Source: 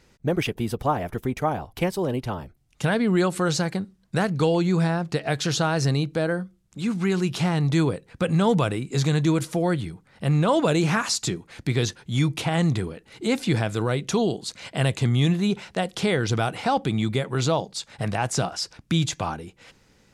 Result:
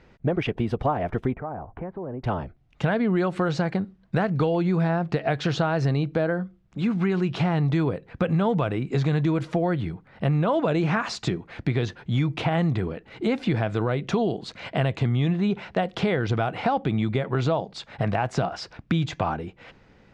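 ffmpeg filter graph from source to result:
ffmpeg -i in.wav -filter_complex "[0:a]asettb=1/sr,asplit=3[link_01][link_02][link_03];[link_01]atrim=end=1.344[link_04];[link_02]atrim=start=1.34:end=2.24,asetpts=PTS-STARTPTS,afade=type=in:duration=0.004:curve=qsin,afade=type=out:start_time=0.896:duration=0.004:curve=qsin,lowpass=frequency=1600:width=0.5412,lowpass=frequency=1600:width=1.3066,acompressor=threshold=-39dB:ratio=3:attack=3.2:release=140:knee=1:detection=peak[link_05];[link_03]atrim=start=2.236[link_06];[link_04][link_05]acrossfade=duration=0.004:curve1=hsin:curve2=qsin[link_07];[link_07][link_06]acrossfade=duration=0.004:curve1=qsin:curve2=hsin,lowpass=2600,equalizer=frequency=680:width_type=o:width=0.33:gain=3.5,acompressor=threshold=-25dB:ratio=4,volume=4.5dB" out.wav

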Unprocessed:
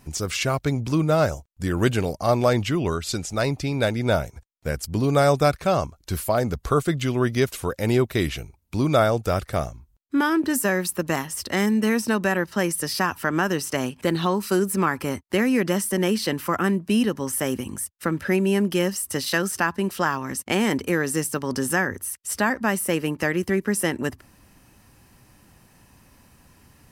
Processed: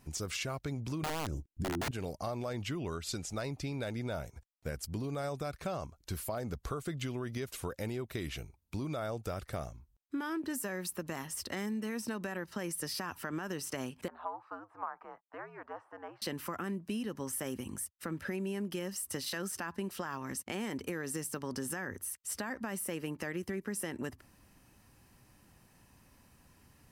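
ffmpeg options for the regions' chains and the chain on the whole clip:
ffmpeg -i in.wav -filter_complex "[0:a]asettb=1/sr,asplit=3[link_01][link_02][link_03];[link_01]atrim=end=1.034[link_04];[link_02]atrim=start=1.03:end=1.91,asetpts=PTS-STARTPTS,afade=type=in:duration=0.004:curve=qsin,afade=type=out:start_time=0.876:duration=0.004:curve=qsin,lowshelf=frequency=460:width_type=q:width=3:gain=12,aeval=exprs='(mod(1.5*val(0)+1,2)-1)/1.5':channel_layout=same[link_05];[link_03]atrim=start=1.906[link_06];[link_04][link_05]acrossfade=duration=0.004:curve1=hsin:curve2=qsin[link_07];[link_07][link_06]acrossfade=duration=0.004:curve1=qsin:curve2=hsin,asettb=1/sr,asplit=3[link_08][link_09][link_10];[link_08]atrim=end=14.084[link_11];[link_09]atrim=start=14.08:end=16.22,asetpts=PTS-STARTPTS,afade=type=in:duration=0.004:curve=qsin,afade=type=out:start_time=2.136:duration=0.004:curve=qsin,aeval=exprs='if(lt(val(0),0),0.708*val(0),val(0))':channel_layout=same,asuperpass=centerf=1000:order=4:qfactor=1.5,afreqshift=-90[link_12];[link_10]atrim=start=16.216[link_13];[link_11][link_12]acrossfade=duration=0.004:curve1=hsin:curve2=qsin[link_14];[link_14][link_13]acrossfade=duration=0.004:curve1=qsin:curve2=hsin,alimiter=limit=-14.5dB:level=0:latency=1:release=53,acompressor=threshold=-25dB:ratio=6,volume=-8.5dB" out.wav

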